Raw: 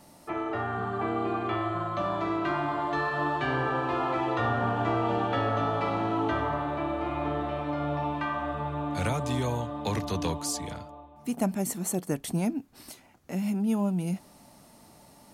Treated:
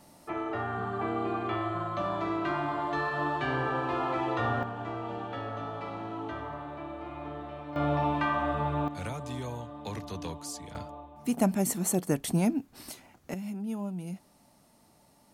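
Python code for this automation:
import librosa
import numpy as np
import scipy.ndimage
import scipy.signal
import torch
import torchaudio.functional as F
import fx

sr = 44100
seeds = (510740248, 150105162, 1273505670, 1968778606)

y = fx.gain(x, sr, db=fx.steps((0.0, -2.0), (4.63, -9.5), (7.76, 2.5), (8.88, -8.0), (10.75, 2.0), (13.34, -8.0)))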